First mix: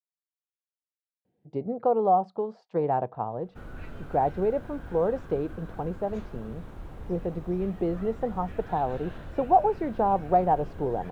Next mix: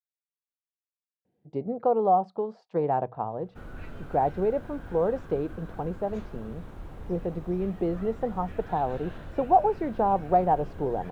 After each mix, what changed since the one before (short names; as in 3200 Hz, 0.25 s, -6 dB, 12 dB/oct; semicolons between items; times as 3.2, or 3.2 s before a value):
master: add notches 60/120 Hz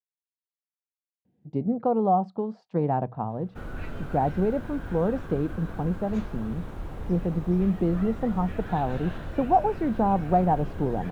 speech: add resonant low shelf 320 Hz +6.5 dB, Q 1.5; background +5.5 dB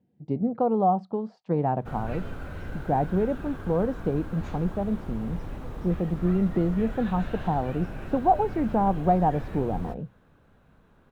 speech: entry -1.25 s; background: entry -1.70 s